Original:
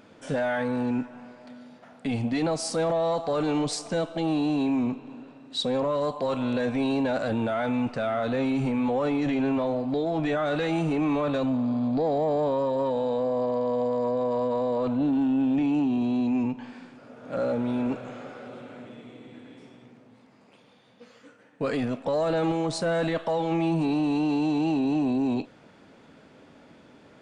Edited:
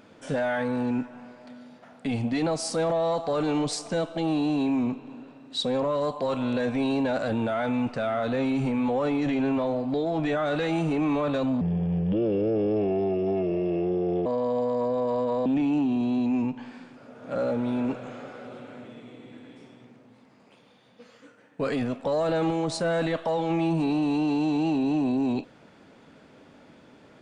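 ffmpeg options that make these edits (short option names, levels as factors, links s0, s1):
-filter_complex "[0:a]asplit=4[s0][s1][s2][s3];[s0]atrim=end=11.614[s4];[s1]atrim=start=11.61:end=13.49,asetpts=PTS-STARTPTS,asetrate=31311,aresample=44100[s5];[s2]atrim=start=13.486:end=14.692[s6];[s3]atrim=start=15.468[s7];[s4][s5]acrossfade=d=0.004:c1=hsin:c2=hsin[s8];[s8][s6]acrossfade=d=0.004:c1=hsin:c2=hsin[s9];[s9][s7]acrossfade=d=0.004:c1=hsin:c2=hsin"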